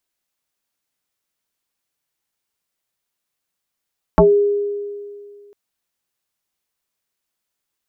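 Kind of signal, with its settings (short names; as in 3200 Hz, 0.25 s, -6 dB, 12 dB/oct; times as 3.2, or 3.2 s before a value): FM tone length 1.35 s, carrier 408 Hz, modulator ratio 0.57, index 3.4, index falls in 0.20 s exponential, decay 2.14 s, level -6 dB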